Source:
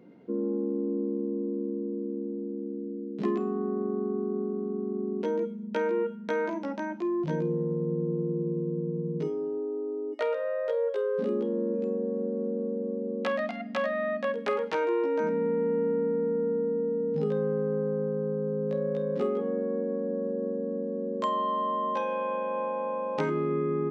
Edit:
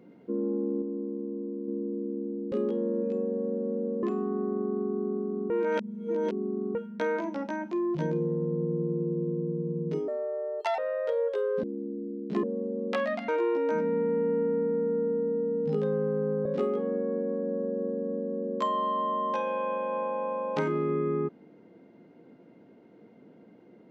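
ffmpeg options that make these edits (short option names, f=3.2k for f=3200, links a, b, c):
-filter_complex "[0:a]asplit=13[a][b][c][d][e][f][g][h][i][j][k][l][m];[a]atrim=end=0.822[n];[b]atrim=start=0.818:end=1.682,asetpts=PTS-STARTPTS,volume=-4dB[o];[c]atrim=start=1.678:end=2.522[p];[d]atrim=start=11.238:end=12.752[q];[e]atrim=start=3.318:end=4.792[r];[f]atrim=start=4.788:end=6.042,asetpts=PTS-STARTPTS,areverse[s];[g]atrim=start=6.038:end=9.374[t];[h]atrim=start=9.37:end=10.39,asetpts=PTS-STARTPTS,asetrate=63945,aresample=44100,atrim=end_sample=31022,asetpts=PTS-STARTPTS[u];[i]atrim=start=10.386:end=11.242[v];[j]atrim=start=2.518:end=3.322[w];[k]atrim=start=12.748:end=13.602[x];[l]atrim=start=14.768:end=17.942[y];[m]atrim=start=19.068[z];[n][o]acrossfade=d=0.004:c1=hsin:c2=hsin[aa];[aa][p]acrossfade=d=0.004:c1=hsin:c2=hsin[ab];[ab][q]acrossfade=d=0.004:c1=hsin:c2=hsin[ac];[ac][r]acrossfade=d=0.004:c1=hsin:c2=hsin[ad];[ad][s]acrossfade=d=0.004:c1=hsin:c2=hsin[ae];[ae][t]acrossfade=d=0.004:c1=hsin:c2=hsin[af];[af][u]acrossfade=d=0.004:c1=hsin:c2=hsin[ag];[ag][v]acrossfade=d=0.004:c1=hsin:c2=hsin[ah];[ah][w]acrossfade=d=0.004:c1=hsin:c2=hsin[ai];[ai][x]acrossfade=d=0.004:c1=hsin:c2=hsin[aj];[aj][y]acrossfade=d=0.004:c1=hsin:c2=hsin[ak];[ak][z]acrossfade=d=0.004:c1=hsin:c2=hsin"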